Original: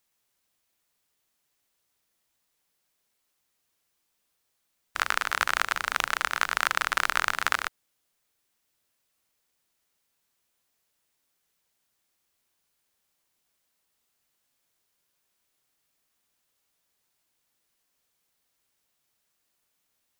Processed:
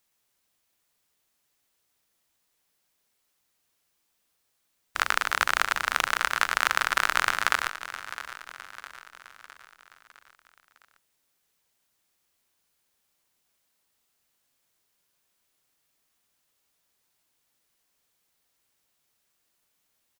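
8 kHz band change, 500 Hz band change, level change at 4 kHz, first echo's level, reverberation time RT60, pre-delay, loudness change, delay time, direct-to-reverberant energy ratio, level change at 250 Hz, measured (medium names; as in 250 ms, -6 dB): +1.5 dB, +2.0 dB, +2.0 dB, -13.5 dB, no reverb, no reverb, +1.0 dB, 659 ms, no reverb, +1.5 dB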